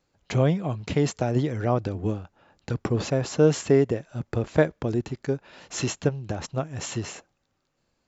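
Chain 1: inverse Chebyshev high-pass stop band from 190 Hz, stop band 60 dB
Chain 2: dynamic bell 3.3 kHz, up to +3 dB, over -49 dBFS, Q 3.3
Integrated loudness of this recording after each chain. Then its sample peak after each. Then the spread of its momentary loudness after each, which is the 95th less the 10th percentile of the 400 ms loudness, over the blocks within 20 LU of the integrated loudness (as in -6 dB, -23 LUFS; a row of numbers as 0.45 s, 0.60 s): -35.0 LUFS, -26.0 LUFS; -13.0 dBFS, -5.5 dBFS; 13 LU, 11 LU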